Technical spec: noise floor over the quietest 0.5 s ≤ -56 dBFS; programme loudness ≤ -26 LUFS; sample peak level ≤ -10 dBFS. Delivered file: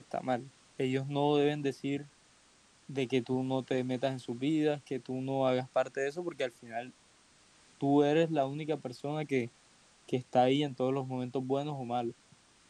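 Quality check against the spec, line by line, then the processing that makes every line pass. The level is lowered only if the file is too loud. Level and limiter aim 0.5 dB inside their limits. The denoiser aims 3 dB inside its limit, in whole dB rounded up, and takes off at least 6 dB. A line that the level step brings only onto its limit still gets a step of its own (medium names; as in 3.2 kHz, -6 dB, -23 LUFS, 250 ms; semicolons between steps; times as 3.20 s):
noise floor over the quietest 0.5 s -64 dBFS: pass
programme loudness -33.0 LUFS: pass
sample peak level -15.5 dBFS: pass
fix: none needed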